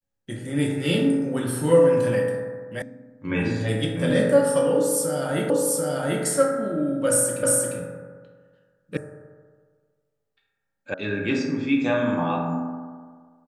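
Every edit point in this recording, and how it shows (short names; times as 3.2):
2.82 sound cut off
5.5 repeat of the last 0.74 s
7.43 repeat of the last 0.35 s
8.97 sound cut off
10.94 sound cut off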